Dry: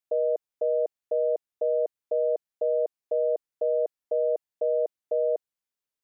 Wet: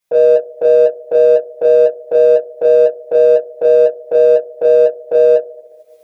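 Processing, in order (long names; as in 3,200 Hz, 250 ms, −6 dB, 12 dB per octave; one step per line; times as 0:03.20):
camcorder AGC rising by 23 dB per second
coupled-rooms reverb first 0.3 s, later 1.7 s, DRR −7.5 dB
transient designer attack 0 dB, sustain −5 dB
in parallel at −7 dB: soft clipping −26 dBFS, distortion −5 dB
on the sum: level +5 dB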